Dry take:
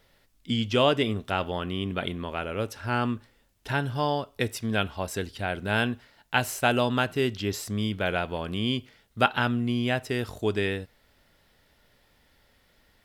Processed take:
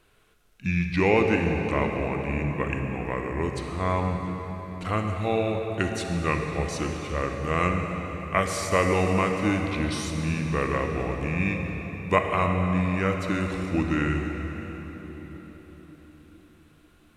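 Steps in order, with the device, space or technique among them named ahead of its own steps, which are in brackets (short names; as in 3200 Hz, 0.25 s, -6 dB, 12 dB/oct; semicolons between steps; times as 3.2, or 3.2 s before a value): slowed and reverbed (varispeed -24%; reverb RT60 4.7 s, pre-delay 32 ms, DRR 3 dB)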